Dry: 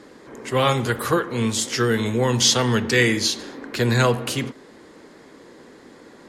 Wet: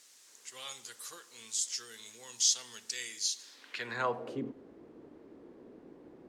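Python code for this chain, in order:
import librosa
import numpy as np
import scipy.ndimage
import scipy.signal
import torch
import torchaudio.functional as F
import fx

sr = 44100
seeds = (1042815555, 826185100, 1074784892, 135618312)

y = fx.dmg_noise_colour(x, sr, seeds[0], colour='pink', level_db=-44.0)
y = fx.dynamic_eq(y, sr, hz=1600.0, q=0.85, threshold_db=-32.0, ratio=4.0, max_db=-4)
y = fx.filter_sweep_bandpass(y, sr, from_hz=6800.0, to_hz=330.0, start_s=3.42, end_s=4.43, q=1.6)
y = y * librosa.db_to_amplitude(-6.0)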